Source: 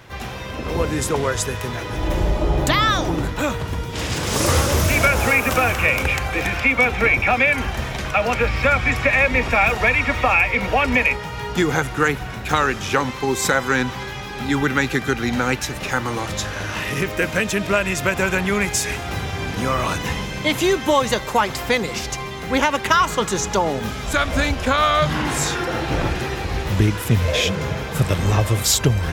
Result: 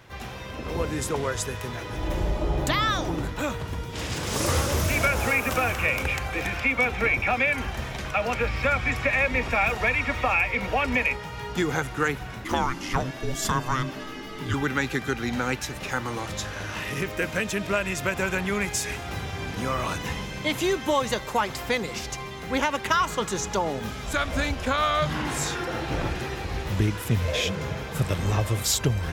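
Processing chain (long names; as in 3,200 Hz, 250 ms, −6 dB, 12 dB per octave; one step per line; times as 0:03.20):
0:12.44–0:14.54: frequency shifter −390 Hz
level −6.5 dB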